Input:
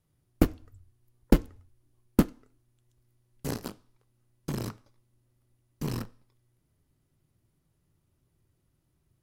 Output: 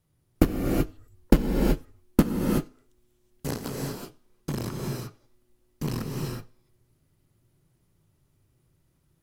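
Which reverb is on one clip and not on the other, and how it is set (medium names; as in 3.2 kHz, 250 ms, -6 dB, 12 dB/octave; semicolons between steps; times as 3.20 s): gated-style reverb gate 400 ms rising, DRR -0.5 dB; trim +2 dB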